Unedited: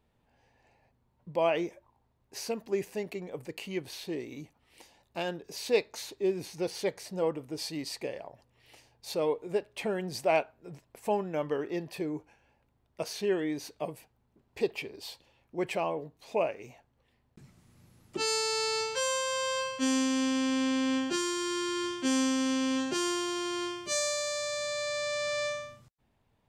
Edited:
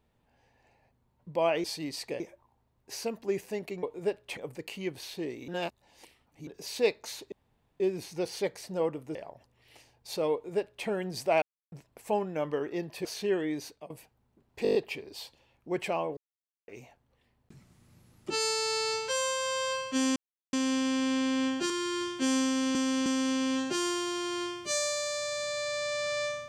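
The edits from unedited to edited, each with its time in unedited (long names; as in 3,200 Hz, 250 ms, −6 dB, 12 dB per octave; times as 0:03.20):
0:04.38–0:05.37: reverse
0:06.22: splice in room tone 0.48 s
0:07.57–0:08.13: move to 0:01.64
0:09.31–0:09.85: duplicate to 0:03.27
0:10.40–0:10.70: silence
0:12.03–0:13.04: remove
0:13.63–0:13.89: fade out, to −21 dB
0:14.62: stutter 0.02 s, 7 plays
0:16.04–0:16.55: silence
0:20.03: splice in silence 0.37 s
0:21.20–0:21.53: remove
0:22.27–0:22.58: repeat, 3 plays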